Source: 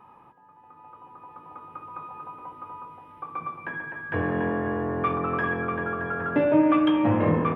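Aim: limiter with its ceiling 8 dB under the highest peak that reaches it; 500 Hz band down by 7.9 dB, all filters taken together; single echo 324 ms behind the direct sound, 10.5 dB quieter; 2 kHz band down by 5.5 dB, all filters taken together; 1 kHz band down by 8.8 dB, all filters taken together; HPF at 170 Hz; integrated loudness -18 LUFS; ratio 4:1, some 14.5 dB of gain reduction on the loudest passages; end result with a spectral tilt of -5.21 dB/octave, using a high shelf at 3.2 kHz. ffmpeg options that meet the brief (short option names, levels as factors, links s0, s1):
-af "highpass=170,equalizer=f=500:t=o:g=-7.5,equalizer=f=1000:t=o:g=-8.5,equalizer=f=2000:t=o:g=-4,highshelf=f=3200:g=3,acompressor=threshold=0.0112:ratio=4,alimiter=level_in=3.76:limit=0.0631:level=0:latency=1,volume=0.266,aecho=1:1:324:0.299,volume=21.1"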